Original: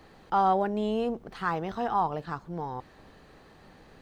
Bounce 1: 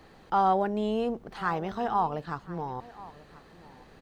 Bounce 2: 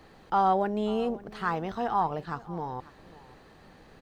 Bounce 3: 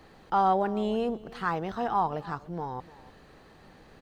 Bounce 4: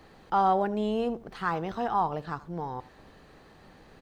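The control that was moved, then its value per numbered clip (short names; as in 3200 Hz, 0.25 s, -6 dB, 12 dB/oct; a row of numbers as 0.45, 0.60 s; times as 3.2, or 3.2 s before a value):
echo, time: 1037, 542, 297, 81 ms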